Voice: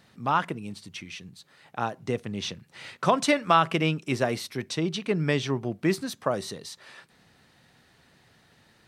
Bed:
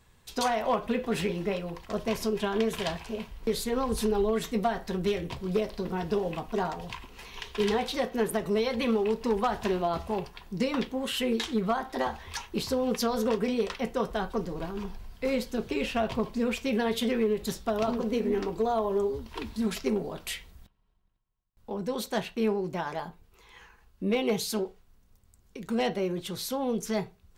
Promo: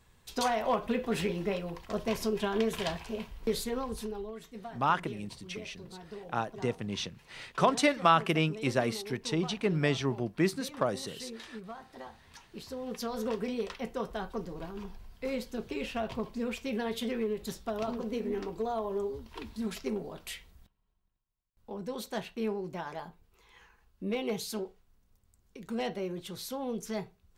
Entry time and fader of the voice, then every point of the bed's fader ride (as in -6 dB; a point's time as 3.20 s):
4.55 s, -3.0 dB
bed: 3.57 s -2 dB
4.39 s -16.5 dB
12.37 s -16.5 dB
13.24 s -6 dB